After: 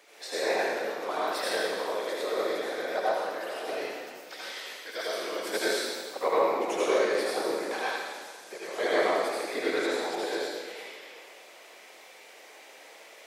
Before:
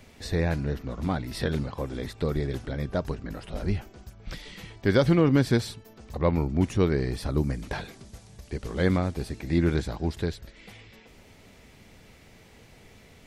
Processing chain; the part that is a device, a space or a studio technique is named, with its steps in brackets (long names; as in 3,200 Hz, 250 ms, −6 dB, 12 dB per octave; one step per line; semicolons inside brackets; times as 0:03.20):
0:04.61–0:05.54: first-order pre-emphasis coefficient 0.8
whispering ghost (random phases in short frames; high-pass filter 450 Hz 24 dB per octave; convolution reverb RT60 1.7 s, pre-delay 71 ms, DRR −7 dB)
level −1.5 dB